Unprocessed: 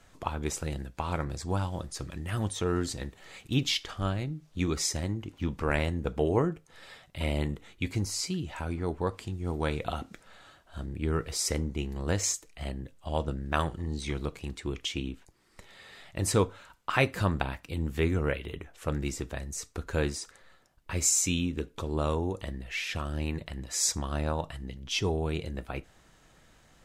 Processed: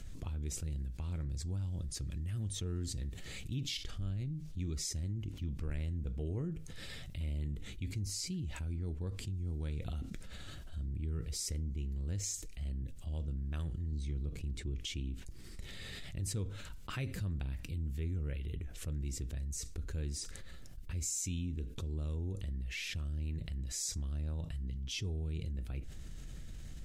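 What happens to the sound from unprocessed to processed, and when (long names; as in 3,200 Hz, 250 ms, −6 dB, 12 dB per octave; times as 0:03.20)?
0:13.92–0:14.79: tilt shelving filter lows +3.5 dB, about 1,100 Hz
whole clip: guitar amp tone stack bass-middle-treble 10-0-1; envelope flattener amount 70%; level +2 dB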